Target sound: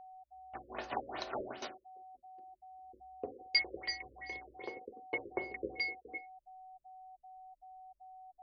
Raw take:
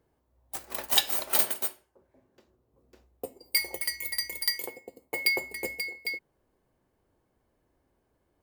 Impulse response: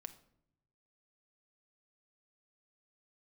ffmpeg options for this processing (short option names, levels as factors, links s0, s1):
-filter_complex "[1:a]atrim=start_sample=2205,asetrate=88200,aresample=44100[s0];[0:a][s0]afir=irnorm=-1:irlink=0,anlmdn=0.00001,aeval=exprs='val(0)+0.00112*sin(2*PI*750*n/s)':c=same,afftfilt=real='re*lt(b*sr/1024,570*pow(6600/570,0.5+0.5*sin(2*PI*2.6*pts/sr)))':imag='im*lt(b*sr/1024,570*pow(6600/570,0.5+0.5*sin(2*PI*2.6*pts/sr)))':win_size=1024:overlap=0.75,volume=2.66"